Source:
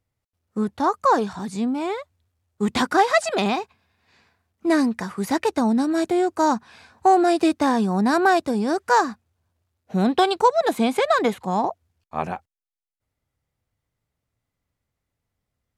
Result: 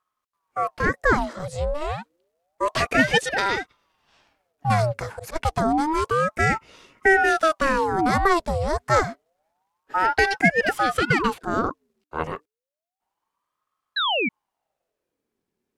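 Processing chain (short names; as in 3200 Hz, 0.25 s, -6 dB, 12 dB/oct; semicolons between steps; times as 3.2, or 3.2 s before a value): 4.68–5.36 auto swell 0.105 s; 13.96–14.29 painted sound fall 1200–2900 Hz -21 dBFS; ring modulator with a swept carrier 740 Hz, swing 60%, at 0.29 Hz; gain +1.5 dB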